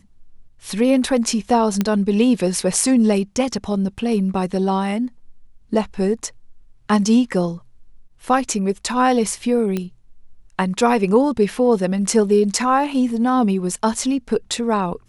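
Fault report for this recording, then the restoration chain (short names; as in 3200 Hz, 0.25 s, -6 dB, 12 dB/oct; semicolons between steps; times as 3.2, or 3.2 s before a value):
1.81 pop -6 dBFS
9.77 pop -11 dBFS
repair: de-click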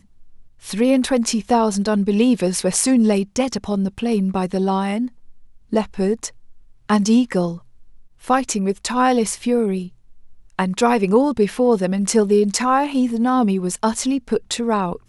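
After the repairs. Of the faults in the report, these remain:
none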